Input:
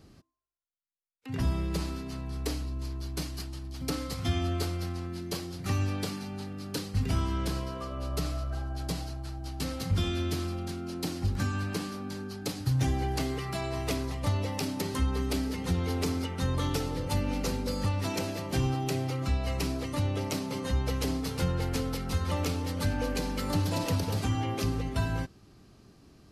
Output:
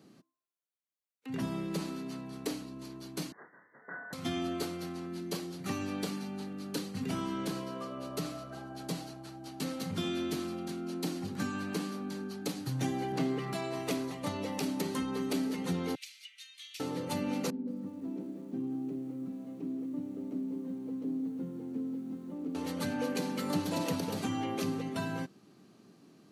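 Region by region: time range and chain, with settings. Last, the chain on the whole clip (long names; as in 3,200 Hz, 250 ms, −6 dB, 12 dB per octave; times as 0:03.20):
0:03.32–0:04.13: Butterworth high-pass 850 Hz 72 dB per octave + double-tracking delay 29 ms −2.5 dB + voice inversion scrambler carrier 2,800 Hz
0:13.12–0:13.53: converter with a step at zero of −44 dBFS + low-pass filter 3,000 Hz 6 dB per octave + low shelf with overshoot 110 Hz −9 dB, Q 3
0:15.95–0:16.80: Butterworth high-pass 2,300 Hz + high-shelf EQ 5,300 Hz −10.5 dB
0:17.50–0:22.55: resonant band-pass 260 Hz, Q 2.9 + feedback echo at a low word length 175 ms, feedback 55%, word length 9 bits, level −12.5 dB
whole clip: high-pass filter 180 Hz 24 dB per octave; low-shelf EQ 250 Hz +7.5 dB; notch filter 5,100 Hz, Q 13; level −3 dB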